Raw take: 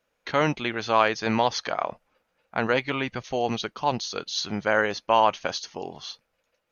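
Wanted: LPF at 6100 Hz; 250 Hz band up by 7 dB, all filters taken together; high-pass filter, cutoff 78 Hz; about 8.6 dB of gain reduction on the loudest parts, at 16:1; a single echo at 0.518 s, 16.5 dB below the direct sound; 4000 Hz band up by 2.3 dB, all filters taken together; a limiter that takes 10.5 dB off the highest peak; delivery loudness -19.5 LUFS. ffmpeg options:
-af "highpass=78,lowpass=6.1k,equalizer=f=250:t=o:g=8.5,equalizer=f=4k:t=o:g=3.5,acompressor=threshold=-22dB:ratio=16,alimiter=limit=-19dB:level=0:latency=1,aecho=1:1:518:0.15,volume=12dB"

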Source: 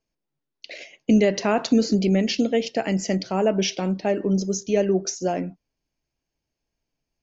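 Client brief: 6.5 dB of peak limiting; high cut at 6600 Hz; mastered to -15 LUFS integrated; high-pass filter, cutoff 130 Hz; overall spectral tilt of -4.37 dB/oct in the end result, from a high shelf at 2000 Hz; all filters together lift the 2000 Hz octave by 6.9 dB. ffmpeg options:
-af "highpass=130,lowpass=6.6k,highshelf=f=2k:g=4,equalizer=f=2k:t=o:g=6,volume=8.5dB,alimiter=limit=-4dB:level=0:latency=1"

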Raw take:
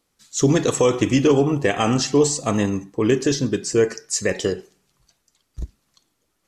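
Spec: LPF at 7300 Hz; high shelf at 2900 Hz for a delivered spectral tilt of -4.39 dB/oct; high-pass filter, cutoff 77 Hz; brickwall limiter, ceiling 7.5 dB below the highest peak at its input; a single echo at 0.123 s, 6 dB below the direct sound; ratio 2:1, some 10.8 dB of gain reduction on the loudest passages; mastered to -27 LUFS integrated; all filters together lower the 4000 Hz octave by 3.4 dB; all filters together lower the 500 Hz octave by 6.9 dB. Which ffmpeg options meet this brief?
-af "highpass=77,lowpass=7.3k,equalizer=f=500:t=o:g=-8.5,highshelf=f=2.9k:g=3.5,equalizer=f=4k:t=o:g=-7.5,acompressor=threshold=-36dB:ratio=2,alimiter=level_in=0.5dB:limit=-24dB:level=0:latency=1,volume=-0.5dB,aecho=1:1:123:0.501,volume=7.5dB"

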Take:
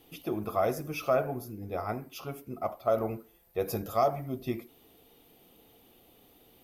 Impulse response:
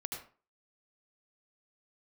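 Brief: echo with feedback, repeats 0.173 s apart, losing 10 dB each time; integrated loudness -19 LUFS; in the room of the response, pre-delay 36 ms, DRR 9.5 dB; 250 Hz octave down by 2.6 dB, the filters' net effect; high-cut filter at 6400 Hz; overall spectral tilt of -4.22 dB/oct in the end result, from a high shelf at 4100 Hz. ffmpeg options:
-filter_complex "[0:a]lowpass=6.4k,equalizer=f=250:t=o:g=-3.5,highshelf=f=4.1k:g=-6.5,aecho=1:1:173|346|519|692:0.316|0.101|0.0324|0.0104,asplit=2[a][b];[1:a]atrim=start_sample=2205,adelay=36[c];[b][c]afir=irnorm=-1:irlink=0,volume=-9.5dB[d];[a][d]amix=inputs=2:normalize=0,volume=13.5dB"

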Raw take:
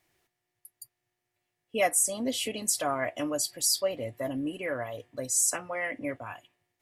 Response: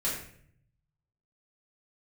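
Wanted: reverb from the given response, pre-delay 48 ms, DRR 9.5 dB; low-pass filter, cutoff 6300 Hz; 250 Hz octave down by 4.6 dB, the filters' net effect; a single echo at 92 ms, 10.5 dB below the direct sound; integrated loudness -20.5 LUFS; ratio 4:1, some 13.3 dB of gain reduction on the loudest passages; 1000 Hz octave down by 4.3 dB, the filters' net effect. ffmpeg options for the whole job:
-filter_complex "[0:a]lowpass=6.3k,equalizer=f=250:t=o:g=-5,equalizer=f=1k:t=o:g=-6.5,acompressor=threshold=-40dB:ratio=4,aecho=1:1:92:0.299,asplit=2[a][b];[1:a]atrim=start_sample=2205,adelay=48[c];[b][c]afir=irnorm=-1:irlink=0,volume=-16dB[d];[a][d]amix=inputs=2:normalize=0,volume=20.5dB"

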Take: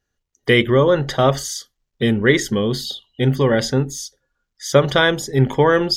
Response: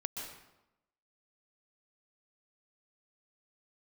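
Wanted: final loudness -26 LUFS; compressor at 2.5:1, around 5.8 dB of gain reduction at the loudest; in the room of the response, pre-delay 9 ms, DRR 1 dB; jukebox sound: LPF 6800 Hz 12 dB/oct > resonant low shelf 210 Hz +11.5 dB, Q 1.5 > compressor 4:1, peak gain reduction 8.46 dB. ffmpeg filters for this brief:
-filter_complex "[0:a]acompressor=threshold=-17dB:ratio=2.5,asplit=2[a][b];[1:a]atrim=start_sample=2205,adelay=9[c];[b][c]afir=irnorm=-1:irlink=0,volume=-2dB[d];[a][d]amix=inputs=2:normalize=0,lowpass=6.8k,lowshelf=f=210:t=q:w=1.5:g=11.5,acompressor=threshold=-10dB:ratio=4,volume=-10.5dB"

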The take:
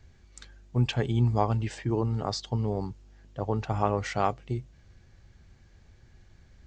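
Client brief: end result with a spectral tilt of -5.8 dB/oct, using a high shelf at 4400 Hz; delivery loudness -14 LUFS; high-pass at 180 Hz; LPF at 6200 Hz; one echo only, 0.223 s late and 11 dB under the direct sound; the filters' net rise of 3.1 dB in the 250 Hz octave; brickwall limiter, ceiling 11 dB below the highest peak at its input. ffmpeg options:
-af "highpass=180,lowpass=6.2k,equalizer=f=250:t=o:g=5.5,highshelf=f=4.4k:g=-4.5,alimiter=limit=-21.5dB:level=0:latency=1,aecho=1:1:223:0.282,volume=19.5dB"

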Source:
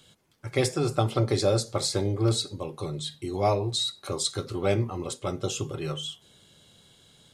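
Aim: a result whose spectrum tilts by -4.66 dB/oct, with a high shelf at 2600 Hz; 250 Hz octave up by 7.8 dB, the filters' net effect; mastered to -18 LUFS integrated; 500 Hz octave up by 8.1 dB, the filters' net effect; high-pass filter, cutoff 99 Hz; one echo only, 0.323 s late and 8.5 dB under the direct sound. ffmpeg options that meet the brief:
-af "highpass=99,equalizer=f=250:t=o:g=8,equalizer=f=500:t=o:g=7.5,highshelf=f=2.6k:g=5.5,aecho=1:1:323:0.376,volume=3.5dB"

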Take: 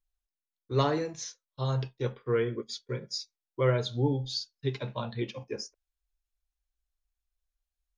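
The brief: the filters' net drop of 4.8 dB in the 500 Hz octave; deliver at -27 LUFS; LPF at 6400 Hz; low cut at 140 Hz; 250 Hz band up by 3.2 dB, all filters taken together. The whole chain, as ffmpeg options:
-af "highpass=140,lowpass=6.4k,equalizer=f=250:t=o:g=8,equalizer=f=500:t=o:g=-8.5,volume=6.5dB"

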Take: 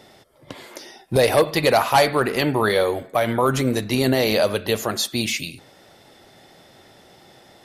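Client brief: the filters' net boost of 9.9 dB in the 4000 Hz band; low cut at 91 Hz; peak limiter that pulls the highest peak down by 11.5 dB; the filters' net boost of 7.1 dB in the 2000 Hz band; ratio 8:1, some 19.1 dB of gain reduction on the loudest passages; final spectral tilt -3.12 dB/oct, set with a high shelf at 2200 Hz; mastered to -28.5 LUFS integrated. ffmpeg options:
-af "highpass=91,equalizer=f=2k:t=o:g=5,highshelf=f=2.2k:g=3,equalizer=f=4k:t=o:g=7.5,acompressor=threshold=-30dB:ratio=8,volume=9dB,alimiter=limit=-17dB:level=0:latency=1"

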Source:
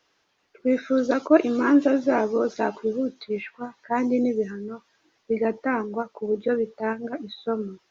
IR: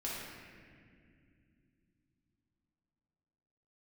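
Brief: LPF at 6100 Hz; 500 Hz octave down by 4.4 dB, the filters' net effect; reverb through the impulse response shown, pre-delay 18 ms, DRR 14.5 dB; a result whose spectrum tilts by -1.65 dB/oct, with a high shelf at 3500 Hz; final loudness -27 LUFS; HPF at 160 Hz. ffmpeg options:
-filter_complex "[0:a]highpass=160,lowpass=6.1k,equalizer=f=500:t=o:g=-5,highshelf=f=3.5k:g=-5,asplit=2[a][b];[1:a]atrim=start_sample=2205,adelay=18[c];[b][c]afir=irnorm=-1:irlink=0,volume=-17dB[d];[a][d]amix=inputs=2:normalize=0"

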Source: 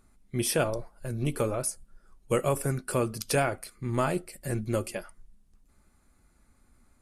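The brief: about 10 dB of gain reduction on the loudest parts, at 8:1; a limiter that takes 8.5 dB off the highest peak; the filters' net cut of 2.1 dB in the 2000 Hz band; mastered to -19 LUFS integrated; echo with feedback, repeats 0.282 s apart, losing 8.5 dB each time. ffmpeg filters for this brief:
-af "equalizer=f=2k:t=o:g=-3,acompressor=threshold=-32dB:ratio=8,alimiter=level_in=4dB:limit=-24dB:level=0:latency=1,volume=-4dB,aecho=1:1:282|564|846|1128:0.376|0.143|0.0543|0.0206,volume=20dB"

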